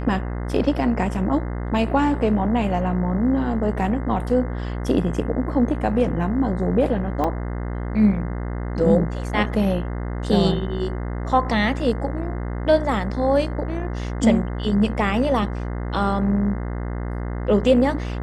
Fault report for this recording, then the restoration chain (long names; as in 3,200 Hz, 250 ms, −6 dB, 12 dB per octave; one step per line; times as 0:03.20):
mains buzz 60 Hz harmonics 35 −27 dBFS
0:07.24: drop-out 4.8 ms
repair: hum removal 60 Hz, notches 35
repair the gap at 0:07.24, 4.8 ms